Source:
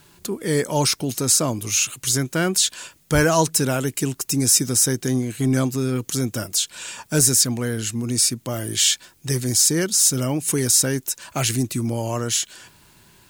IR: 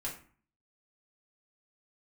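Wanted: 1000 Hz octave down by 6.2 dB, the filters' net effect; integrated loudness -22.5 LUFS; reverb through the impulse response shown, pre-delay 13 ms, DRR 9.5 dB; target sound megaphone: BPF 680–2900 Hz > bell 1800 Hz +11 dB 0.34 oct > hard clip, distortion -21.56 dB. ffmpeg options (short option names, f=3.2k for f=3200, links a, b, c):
-filter_complex "[0:a]equalizer=f=1k:t=o:g=-7.5,asplit=2[a][b];[1:a]atrim=start_sample=2205,adelay=13[c];[b][c]afir=irnorm=-1:irlink=0,volume=-10.5dB[d];[a][d]amix=inputs=2:normalize=0,highpass=680,lowpass=2.9k,equalizer=f=1.8k:t=o:w=0.34:g=11,asoftclip=type=hard:threshold=-17dB,volume=8dB"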